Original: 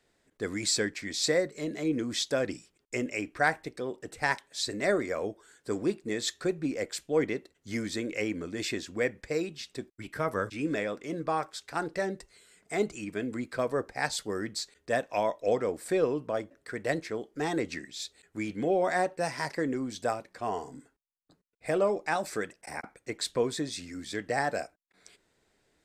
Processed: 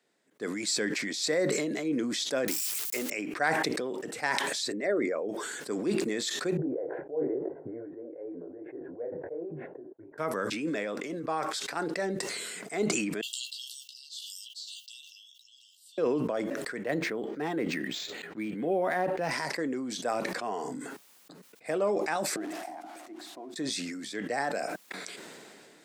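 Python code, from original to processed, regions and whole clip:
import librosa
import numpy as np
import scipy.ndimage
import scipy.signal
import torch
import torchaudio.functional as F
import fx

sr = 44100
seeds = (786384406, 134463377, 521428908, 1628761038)

y = fx.chain(x, sr, fx.crossing_spikes(level_db=-23.5),
    fx.highpass(hz=270.0, slope=6), at=(2.48, 3.1))
y = fx.chain(y, sr, fx.envelope_sharpen(power=1.5),
    fx.lowpass(hz=9900.0, slope=12), at=(4.72, 5.29))
y = fx.chain(y, sr, fx.steep_lowpass(hz=1400.0, slope=48),
    fx.fixed_phaser(hz=510.0, stages=4),
    fx.detune_double(cents=35), at=(6.57, 10.18))
y = fx.chain(y, sr, fx.brickwall_highpass(low_hz=2700.0),
    fx.peak_eq(hz=9400.0, db=-13.0, octaves=1.7),
    fx.doubler(ms=14.0, db=-5.0), at=(13.21, 15.98))
y = fx.chain(y, sr, fx.bass_treble(bass_db=3, treble_db=-7),
    fx.resample_linear(factor=4), at=(16.84, 19.31))
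y = fx.chain(y, sr, fx.crossing_spikes(level_db=-24.0),
    fx.double_bandpass(hz=470.0, octaves=1.1),
    fx.hum_notches(base_hz=60, count=9), at=(22.36, 23.56))
y = scipy.signal.sosfilt(scipy.signal.butter(4, 170.0, 'highpass', fs=sr, output='sos'), y)
y = fx.sustainer(y, sr, db_per_s=21.0)
y = F.gain(torch.from_numpy(y), -2.5).numpy()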